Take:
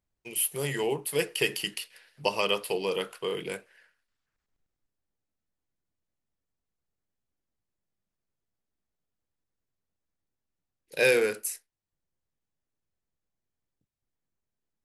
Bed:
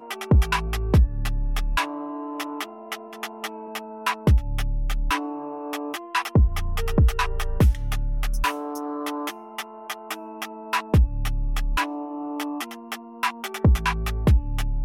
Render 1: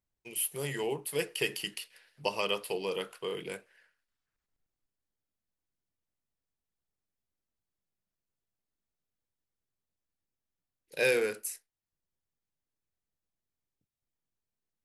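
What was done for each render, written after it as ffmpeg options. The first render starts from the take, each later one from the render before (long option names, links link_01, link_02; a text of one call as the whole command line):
ffmpeg -i in.wav -af "volume=-4.5dB" out.wav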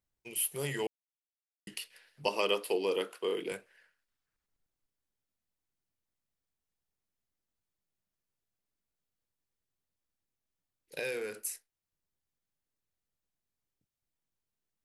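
ffmpeg -i in.wav -filter_complex "[0:a]asettb=1/sr,asplit=3[link_01][link_02][link_03];[link_01]atrim=end=2.284[link_04];[link_02]atrim=start=2.28:end=3.52,asetpts=PTS-STARTPTS,afade=type=in:duration=0.004:curve=qsin,afade=type=out:start_time=1.236:duration=0.004:curve=qsin,highpass=frequency=290:width_type=q:width=1.9[link_05];[link_03]atrim=start=3.516[link_06];[link_04][link_05]acrossfade=duration=0.004:curve1=hsin:curve2=qsin[link_07];[link_07][link_06]acrossfade=duration=0.004:curve1=qsin:curve2=hsin,asettb=1/sr,asplit=3[link_08][link_09][link_10];[link_08]atrim=end=10.994[link_11];[link_09]atrim=start=10.99:end=11.45,asetpts=PTS-STARTPTS,afade=type=in:duration=0.004:curve=qsin,afade=type=out:start_time=0.456:duration=0.004:curve=qsin,acompressor=threshold=-40dB:ratio=2:attack=3.2:release=140:knee=1:detection=peak[link_12];[link_10]atrim=start=11.446[link_13];[link_11][link_12]acrossfade=duration=0.004:curve1=hsin:curve2=qsin[link_14];[link_14][link_13]acrossfade=duration=0.004:curve1=qsin:curve2=hsin,asplit=3[link_15][link_16][link_17];[link_15]atrim=end=0.87,asetpts=PTS-STARTPTS,afade=type=out:start_time=0.866:duration=0.004:curve=hsin[link_18];[link_16]atrim=start=0.87:end=1.67,asetpts=PTS-STARTPTS,volume=0[link_19];[link_17]atrim=start=1.67,asetpts=PTS-STARTPTS,afade=type=in:duration=0.004:curve=hsin[link_20];[link_18][link_19][link_20]concat=n=3:v=0:a=1" out.wav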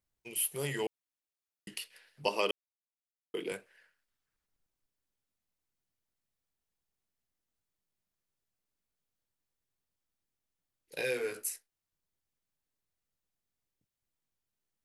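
ffmpeg -i in.wav -filter_complex "[0:a]asettb=1/sr,asplit=3[link_01][link_02][link_03];[link_01]atrim=end=10.964[link_04];[link_02]atrim=start=10.96:end=11.49,asetpts=PTS-STARTPTS,afade=type=in:duration=0.004:curve=qsin,afade=type=out:start_time=0.526:duration=0.004:curve=qsin,asplit=2[link_05][link_06];[link_06]adelay=16,volume=-2dB[link_07];[link_05][link_07]amix=inputs=2:normalize=0,atrim=end_sample=23373[link_08];[link_03]atrim=start=11.486[link_09];[link_04][link_08]acrossfade=duration=0.004:curve1=hsin:curve2=qsin[link_10];[link_10][link_09]acrossfade=duration=0.004:curve1=qsin:curve2=hsin,asplit=3[link_11][link_12][link_13];[link_11]atrim=end=2.51,asetpts=PTS-STARTPTS,afade=type=out:start_time=2.506:duration=0.004:curve=hsin[link_14];[link_12]atrim=start=2.51:end=3.34,asetpts=PTS-STARTPTS,volume=0[link_15];[link_13]atrim=start=3.34,asetpts=PTS-STARTPTS,afade=type=in:duration=0.004:curve=hsin[link_16];[link_14][link_15][link_16]concat=n=3:v=0:a=1" out.wav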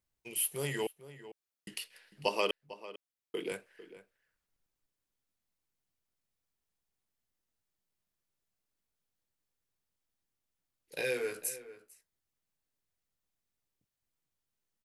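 ffmpeg -i in.wav -filter_complex "[0:a]asplit=2[link_01][link_02];[link_02]adelay=449,volume=-15dB,highshelf=frequency=4000:gain=-10.1[link_03];[link_01][link_03]amix=inputs=2:normalize=0" out.wav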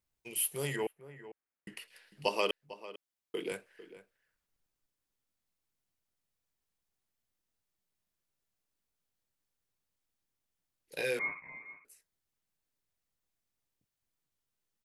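ffmpeg -i in.wav -filter_complex "[0:a]asettb=1/sr,asplit=3[link_01][link_02][link_03];[link_01]atrim=end=0.764[link_04];[link_02]atrim=start=0.76:end=1.88,asetpts=PTS-STARTPTS,afade=type=in:duration=0.004:curve=qsin,afade=type=out:start_time=1.116:duration=0.004:curve=qsin,highshelf=frequency=2700:width_type=q:width=1.5:gain=-9.5[link_05];[link_03]atrim=start=1.876[link_06];[link_04][link_05]acrossfade=duration=0.004:curve1=hsin:curve2=qsin[link_07];[link_07][link_06]acrossfade=duration=0.004:curve1=qsin:curve2=hsin,asettb=1/sr,asplit=3[link_08][link_09][link_10];[link_08]atrim=end=11.194[link_11];[link_09]atrim=start=11.19:end=11.85,asetpts=PTS-STARTPTS,afade=type=in:duration=0.004:curve=qsin,afade=type=out:start_time=0.656:duration=0.004:curve=qsin,lowpass=frequency=2200:width_type=q:width=0.5098,lowpass=frequency=2200:width_type=q:width=0.6013,lowpass=frequency=2200:width_type=q:width=0.9,lowpass=frequency=2200:width_type=q:width=2.563,afreqshift=-2600[link_12];[link_10]atrim=start=11.846[link_13];[link_11][link_12]acrossfade=duration=0.004:curve1=hsin:curve2=qsin[link_14];[link_14][link_13]acrossfade=duration=0.004:curve1=qsin:curve2=hsin" out.wav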